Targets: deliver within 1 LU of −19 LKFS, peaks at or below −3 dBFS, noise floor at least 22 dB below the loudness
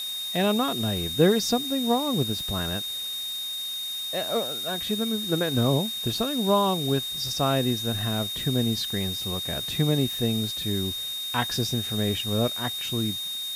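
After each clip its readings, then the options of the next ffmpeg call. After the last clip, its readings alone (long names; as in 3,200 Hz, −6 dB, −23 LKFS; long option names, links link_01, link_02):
interfering tone 3,700 Hz; level of the tone −30 dBFS; background noise floor −32 dBFS; target noise floor −48 dBFS; integrated loudness −25.5 LKFS; sample peak −7.5 dBFS; target loudness −19.0 LKFS
→ -af "bandreject=frequency=3700:width=30"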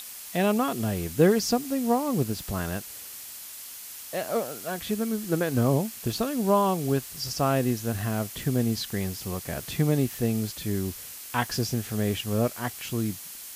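interfering tone none found; background noise floor −41 dBFS; target noise floor −50 dBFS
→ -af "afftdn=noise_reduction=9:noise_floor=-41"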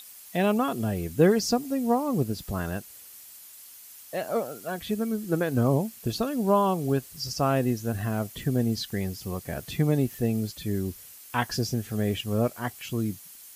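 background noise floor −48 dBFS; target noise floor −50 dBFS
→ -af "afftdn=noise_reduction=6:noise_floor=-48"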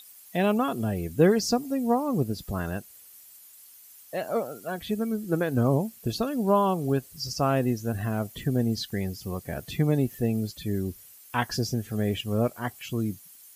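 background noise floor −51 dBFS; integrated loudness −27.5 LKFS; sample peak −8.5 dBFS; target loudness −19.0 LKFS
→ -af "volume=8.5dB,alimiter=limit=-3dB:level=0:latency=1"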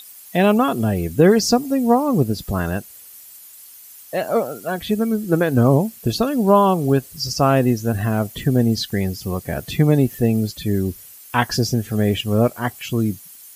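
integrated loudness −19.5 LKFS; sample peak −3.0 dBFS; background noise floor −43 dBFS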